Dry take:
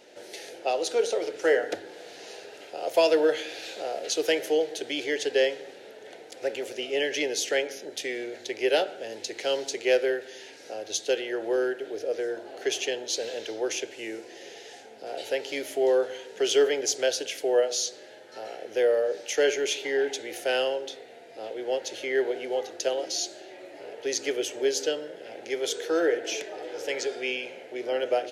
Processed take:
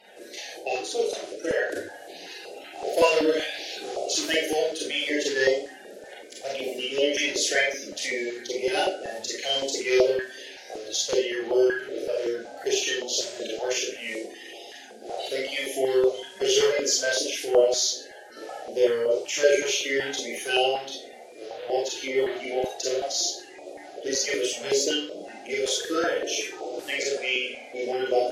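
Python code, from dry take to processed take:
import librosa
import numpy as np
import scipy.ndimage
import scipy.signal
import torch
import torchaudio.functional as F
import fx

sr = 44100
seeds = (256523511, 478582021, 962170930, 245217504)

y = fx.spec_quant(x, sr, step_db=30)
y = fx.level_steps(y, sr, step_db=9, at=(0.59, 1.69))
y = fx.rev_schroeder(y, sr, rt60_s=0.34, comb_ms=30, drr_db=-4.0)
y = fx.filter_held_notch(y, sr, hz=5.3, low_hz=290.0, high_hz=1700.0)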